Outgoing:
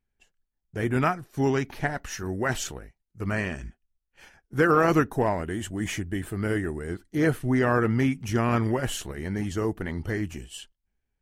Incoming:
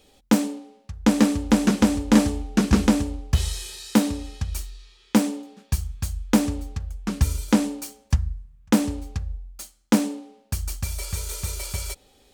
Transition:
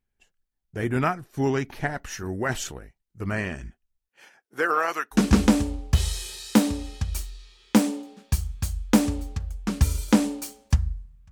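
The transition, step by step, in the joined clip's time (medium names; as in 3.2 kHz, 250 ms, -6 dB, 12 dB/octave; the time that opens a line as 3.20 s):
outgoing
4.07–5.19 s: high-pass 200 Hz -> 1.4 kHz
5.15 s: go over to incoming from 2.55 s, crossfade 0.08 s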